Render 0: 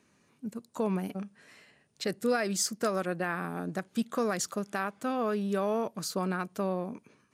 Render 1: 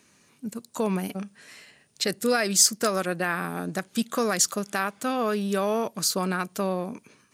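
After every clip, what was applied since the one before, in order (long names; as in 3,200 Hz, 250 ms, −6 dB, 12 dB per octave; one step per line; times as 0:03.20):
high-shelf EQ 2,400 Hz +9.5 dB
level +3.5 dB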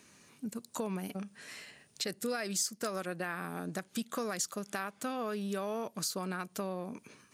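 downward compressor 2.5 to 1, threshold −38 dBFS, peak gain reduction 15.5 dB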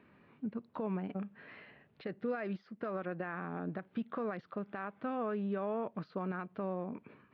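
brickwall limiter −26.5 dBFS, peak gain reduction 6.5 dB
Gaussian smoothing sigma 3.8 samples
level +1 dB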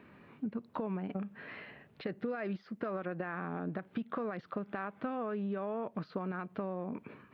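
downward compressor, threshold −39 dBFS, peak gain reduction 8 dB
level +6 dB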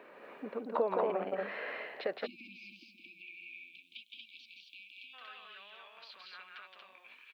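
loudspeakers that aren't time-aligned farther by 58 metres −3 dB, 80 metres −2 dB
time-frequency box erased 0:02.26–0:05.14, 360–2,200 Hz
high-pass filter sweep 520 Hz → 3,100 Hz, 0:01.95–0:03.89
level +3 dB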